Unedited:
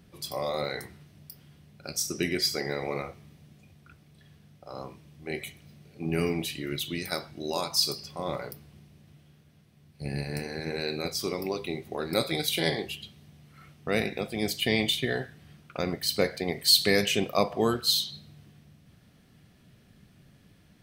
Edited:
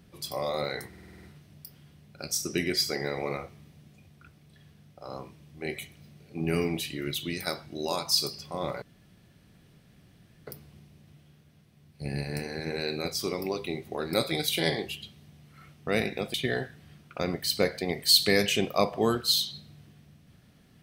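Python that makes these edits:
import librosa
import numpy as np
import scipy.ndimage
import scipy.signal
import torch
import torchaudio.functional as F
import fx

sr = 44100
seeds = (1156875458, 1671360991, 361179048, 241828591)

y = fx.edit(x, sr, fx.stutter(start_s=0.88, slice_s=0.05, count=8),
    fx.insert_room_tone(at_s=8.47, length_s=1.65),
    fx.cut(start_s=14.34, length_s=0.59), tone=tone)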